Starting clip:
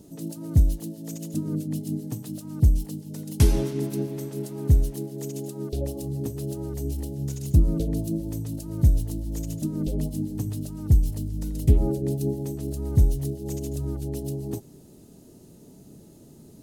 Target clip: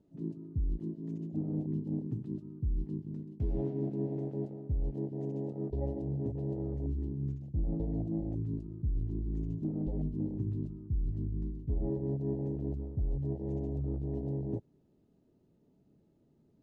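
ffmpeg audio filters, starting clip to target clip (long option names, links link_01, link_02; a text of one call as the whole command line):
ffmpeg -i in.wav -af "lowpass=2600,afwtdn=0.0447,areverse,acompressor=threshold=-28dB:ratio=6,areverse,volume=-2dB" out.wav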